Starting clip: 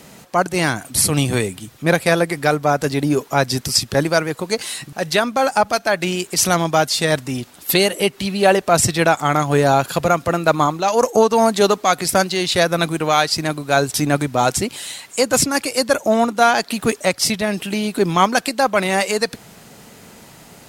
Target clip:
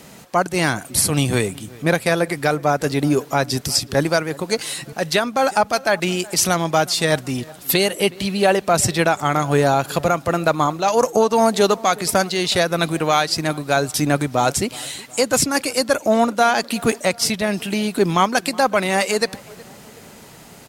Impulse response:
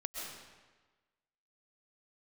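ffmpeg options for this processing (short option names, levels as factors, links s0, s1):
-filter_complex "[0:a]alimiter=limit=0.562:level=0:latency=1:release=304,asplit=2[s0][s1];[s1]adelay=369,lowpass=f=2000:p=1,volume=0.0841,asplit=2[s2][s3];[s3]adelay=369,lowpass=f=2000:p=1,volume=0.5,asplit=2[s4][s5];[s5]adelay=369,lowpass=f=2000:p=1,volume=0.5,asplit=2[s6][s7];[s7]adelay=369,lowpass=f=2000:p=1,volume=0.5[s8];[s2][s4][s6][s8]amix=inputs=4:normalize=0[s9];[s0][s9]amix=inputs=2:normalize=0"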